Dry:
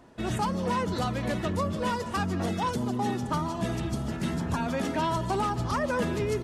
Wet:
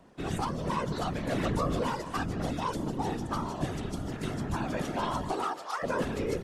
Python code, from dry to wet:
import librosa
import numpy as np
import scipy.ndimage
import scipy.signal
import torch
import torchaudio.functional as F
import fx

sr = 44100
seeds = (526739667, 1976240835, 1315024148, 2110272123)

y = fx.highpass(x, sr, hz=fx.line((5.32, 230.0), (5.82, 700.0)), slope=24, at=(5.32, 5.82), fade=0.02)
y = fx.whisperise(y, sr, seeds[0])
y = fx.env_flatten(y, sr, amount_pct=70, at=(1.31, 1.82), fade=0.02)
y = y * librosa.db_to_amplitude(-3.5)